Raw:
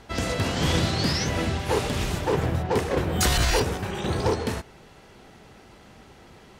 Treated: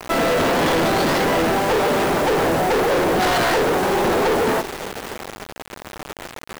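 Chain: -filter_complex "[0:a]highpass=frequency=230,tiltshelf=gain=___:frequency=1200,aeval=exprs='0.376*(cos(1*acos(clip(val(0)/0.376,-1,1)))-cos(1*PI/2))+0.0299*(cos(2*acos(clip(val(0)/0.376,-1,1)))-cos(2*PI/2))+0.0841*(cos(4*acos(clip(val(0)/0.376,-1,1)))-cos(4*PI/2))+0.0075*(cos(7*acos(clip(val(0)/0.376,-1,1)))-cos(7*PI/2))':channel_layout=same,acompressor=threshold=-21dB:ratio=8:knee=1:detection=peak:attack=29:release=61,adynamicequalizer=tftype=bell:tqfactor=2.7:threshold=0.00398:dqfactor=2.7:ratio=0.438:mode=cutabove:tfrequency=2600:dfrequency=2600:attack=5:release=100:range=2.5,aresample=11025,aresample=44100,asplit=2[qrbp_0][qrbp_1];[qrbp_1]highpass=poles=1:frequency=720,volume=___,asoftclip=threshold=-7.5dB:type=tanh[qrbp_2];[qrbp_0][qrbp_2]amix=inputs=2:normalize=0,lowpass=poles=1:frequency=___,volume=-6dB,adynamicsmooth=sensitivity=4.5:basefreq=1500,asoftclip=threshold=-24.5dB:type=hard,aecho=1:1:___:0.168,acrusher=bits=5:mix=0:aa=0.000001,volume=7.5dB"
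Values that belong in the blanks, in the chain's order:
6.5, 19dB, 2100, 561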